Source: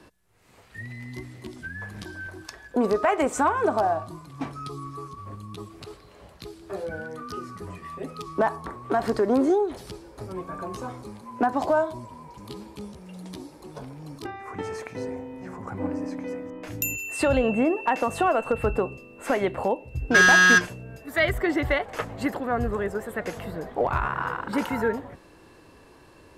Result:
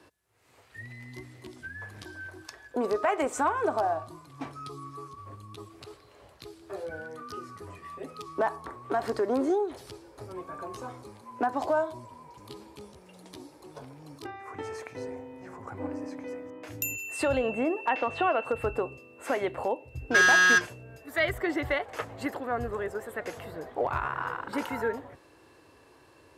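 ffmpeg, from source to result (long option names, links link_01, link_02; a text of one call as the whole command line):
ffmpeg -i in.wav -filter_complex "[0:a]asettb=1/sr,asplit=3[link_01][link_02][link_03];[link_01]atrim=end=17.894[link_04];[link_02]atrim=start=17.89:end=18.45,asetpts=PTS-STARTPTS,afade=type=in:duration=0.004:curve=qsin,afade=type=out:start_time=0.556:duration=0.004:curve=qsin,lowpass=frequency=3100:width_type=q:width=1.7[link_05];[link_03]atrim=start=18.446[link_06];[link_04][link_05]acrossfade=duration=0.004:curve1=hsin:curve2=qsin[link_07];[link_07][link_06]acrossfade=duration=0.004:curve1=qsin:curve2=hsin,highpass=81,equalizer=frequency=190:width_type=o:width=0.56:gain=-11,volume=-4dB" out.wav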